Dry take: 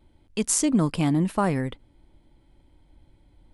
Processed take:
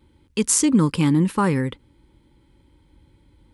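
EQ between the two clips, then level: high-pass 50 Hz; Butterworth band-stop 680 Hz, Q 2.6; +4.5 dB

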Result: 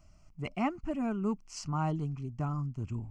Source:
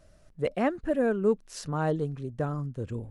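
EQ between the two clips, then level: static phaser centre 2.5 kHz, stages 8; 0.0 dB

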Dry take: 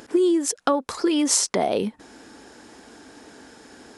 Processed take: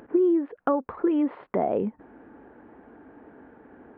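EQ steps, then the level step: Gaussian low-pass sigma 5.2 samples; -1.5 dB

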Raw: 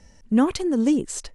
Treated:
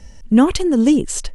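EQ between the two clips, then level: bass shelf 84 Hz +10 dB; peaking EQ 3 kHz +4.5 dB 0.36 oct; treble shelf 9.1 kHz +4.5 dB; +5.5 dB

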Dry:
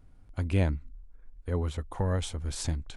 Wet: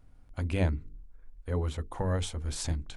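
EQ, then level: hum notches 50/100/150/200/250/300/350/400/450 Hz; hum notches 50/100/150/200/250/300/350/400/450 Hz; 0.0 dB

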